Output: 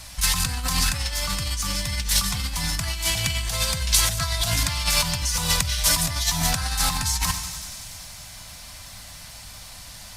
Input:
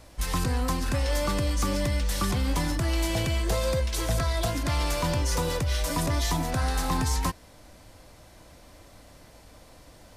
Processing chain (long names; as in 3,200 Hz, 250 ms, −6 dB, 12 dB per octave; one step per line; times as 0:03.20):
feedback echo with a high-pass in the loop 95 ms, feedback 82%, high-pass 1,000 Hz, level −16 dB
feedback delay network reverb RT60 1.2 s, low-frequency decay 1.3×, high-frequency decay 0.6×, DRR 14 dB
compressor whose output falls as the input rises −28 dBFS, ratio −0.5
drawn EQ curve 190 Hz 0 dB, 370 Hz −21 dB, 730 Hz −2 dB, 4,500 Hz +10 dB
level +3.5 dB
Opus 48 kbit/s 48,000 Hz